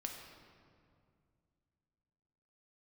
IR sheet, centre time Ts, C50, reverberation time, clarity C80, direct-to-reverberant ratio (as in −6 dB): 57 ms, 4.0 dB, 2.3 s, 5.0 dB, 1.5 dB